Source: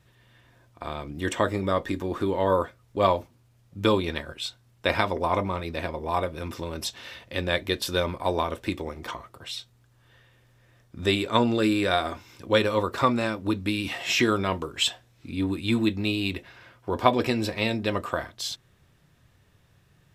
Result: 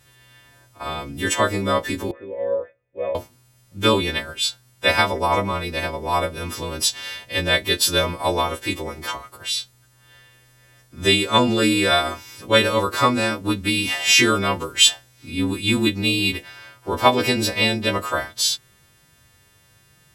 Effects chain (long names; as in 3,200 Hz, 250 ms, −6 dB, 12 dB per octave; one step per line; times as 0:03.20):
every partial snapped to a pitch grid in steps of 2 semitones
0:02.11–0:03.15: formant resonators in series e
level +4.5 dB